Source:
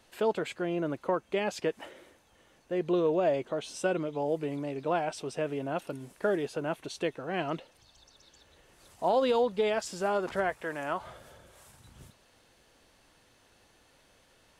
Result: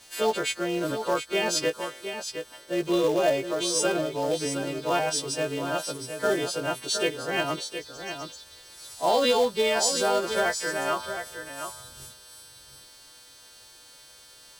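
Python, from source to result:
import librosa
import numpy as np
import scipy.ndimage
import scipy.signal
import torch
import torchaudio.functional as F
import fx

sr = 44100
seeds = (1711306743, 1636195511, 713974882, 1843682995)

p1 = fx.freq_snap(x, sr, grid_st=2)
p2 = fx.peak_eq(p1, sr, hz=190.0, db=-6.5, octaves=0.26)
p3 = fx.quant_companded(p2, sr, bits=4)
p4 = p2 + (p3 * 10.0 ** (-6.0 / 20.0))
p5 = fx.peak_eq(p4, sr, hz=5200.0, db=4.5, octaves=1.7)
y = p5 + 10.0 ** (-8.5 / 20.0) * np.pad(p5, (int(715 * sr / 1000.0), 0))[:len(p5)]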